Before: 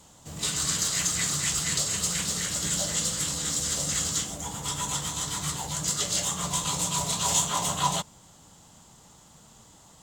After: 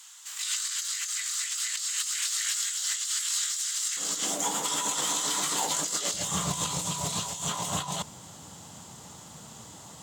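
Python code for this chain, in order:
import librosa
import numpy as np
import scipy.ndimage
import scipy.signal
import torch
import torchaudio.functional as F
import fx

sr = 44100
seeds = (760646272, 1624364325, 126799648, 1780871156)

y = fx.highpass(x, sr, hz=fx.steps((0.0, 1400.0), (3.97, 250.0), (6.14, 77.0)), slope=24)
y = fx.over_compress(y, sr, threshold_db=-34.0, ratio=-1.0)
y = y * 10.0 ** (3.0 / 20.0)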